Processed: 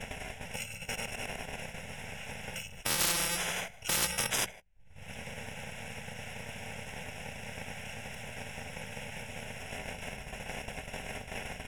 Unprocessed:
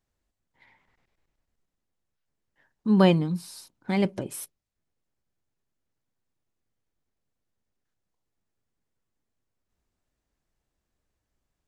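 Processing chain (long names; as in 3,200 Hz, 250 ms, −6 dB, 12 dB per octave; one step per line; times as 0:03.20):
samples in bit-reversed order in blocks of 128 samples
mains-hum notches 60/120/180 Hz
single-tap delay 155 ms −18 dB
in parallel at −2 dB: upward compression, threshold −23 dBFS
on the sum: parametric band 2,300 Hz +2.5 dB 0.23 octaves
phaser with its sweep stopped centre 1,200 Hz, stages 6
soft clipping −11.5 dBFS, distortion −14 dB
downward compressor 1.5 to 1, threshold −44 dBFS, peak gain reduction 10.5 dB
low-pass filter 4,400 Hz 12 dB per octave
low-shelf EQ 97 Hz +8 dB
downward expander −38 dBFS
every bin compressed towards the loudest bin 10 to 1
level +9 dB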